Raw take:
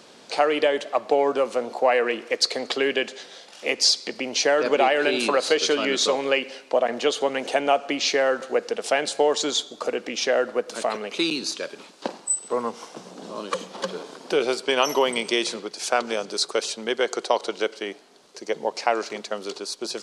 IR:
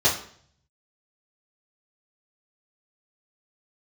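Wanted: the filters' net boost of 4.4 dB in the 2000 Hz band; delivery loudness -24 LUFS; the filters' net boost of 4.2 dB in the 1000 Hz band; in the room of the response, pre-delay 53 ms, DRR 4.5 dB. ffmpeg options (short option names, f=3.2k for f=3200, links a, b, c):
-filter_complex "[0:a]equalizer=f=1k:t=o:g=5,equalizer=f=2k:t=o:g=4,asplit=2[a][b];[1:a]atrim=start_sample=2205,adelay=53[c];[b][c]afir=irnorm=-1:irlink=0,volume=-20.5dB[d];[a][d]amix=inputs=2:normalize=0,volume=-4dB"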